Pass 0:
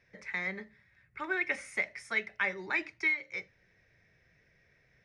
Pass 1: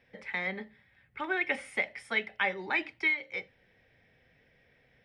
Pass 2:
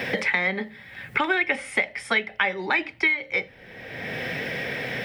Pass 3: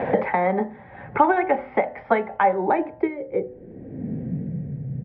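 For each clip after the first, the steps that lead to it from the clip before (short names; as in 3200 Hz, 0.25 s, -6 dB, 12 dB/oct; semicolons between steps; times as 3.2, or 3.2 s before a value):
thirty-one-band EQ 250 Hz +10 dB, 500 Hz +7 dB, 800 Hz +9 dB, 3150 Hz +11 dB, 6300 Hz -11 dB
three-band squash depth 100%; gain +8.5 dB
downsampling 11025 Hz; low-pass sweep 830 Hz -> 140 Hz, 2.43–4.83; de-hum 124.9 Hz, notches 15; gain +5.5 dB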